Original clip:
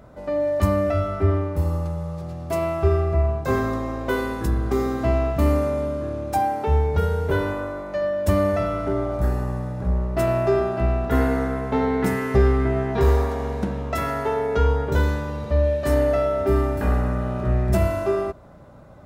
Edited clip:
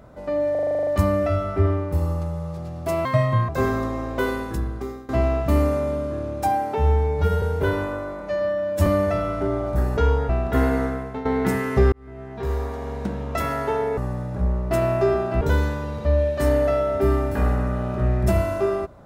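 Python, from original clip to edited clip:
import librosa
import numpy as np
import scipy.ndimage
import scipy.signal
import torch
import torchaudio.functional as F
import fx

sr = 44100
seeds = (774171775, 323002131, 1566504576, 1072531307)

y = fx.edit(x, sr, fx.stutter(start_s=0.51, slice_s=0.04, count=10),
    fx.speed_span(start_s=2.69, length_s=0.7, speed=1.6),
    fx.fade_out_to(start_s=4.2, length_s=0.79, floor_db=-21.0),
    fx.stretch_span(start_s=6.65, length_s=0.45, factor=1.5),
    fx.stretch_span(start_s=7.88, length_s=0.44, factor=1.5),
    fx.swap(start_s=9.43, length_s=1.44, other_s=14.55, other_length_s=0.32),
    fx.fade_out_to(start_s=11.41, length_s=0.42, floor_db=-13.0),
    fx.fade_in_span(start_s=12.5, length_s=1.47), tone=tone)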